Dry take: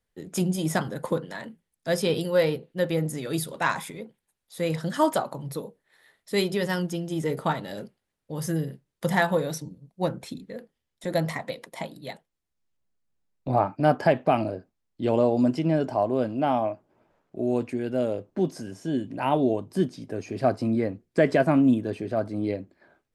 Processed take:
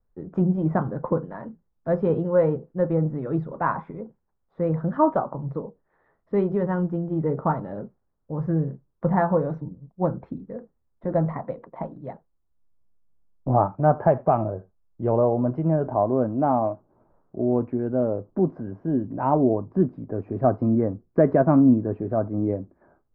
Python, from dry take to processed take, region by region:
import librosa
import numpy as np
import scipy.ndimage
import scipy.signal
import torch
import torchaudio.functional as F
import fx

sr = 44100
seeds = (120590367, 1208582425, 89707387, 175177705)

y = fx.chain(x, sr, fx.peak_eq(hz=270.0, db=-10.0, octaves=0.45),
    fx.echo_single(ms=80, db=-23.5), at=(13.66, 15.87))
y = scipy.signal.sosfilt(scipy.signal.cheby1(3, 1.0, 1200.0, 'lowpass', fs=sr, output='sos'), y)
y = fx.low_shelf(y, sr, hz=67.0, db=11.5)
y = F.gain(torch.from_numpy(y), 3.0).numpy()